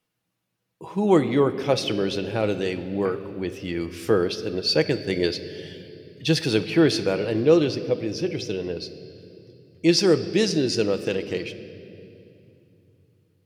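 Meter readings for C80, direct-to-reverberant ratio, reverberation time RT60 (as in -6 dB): 13.0 dB, 8.5 dB, 2.7 s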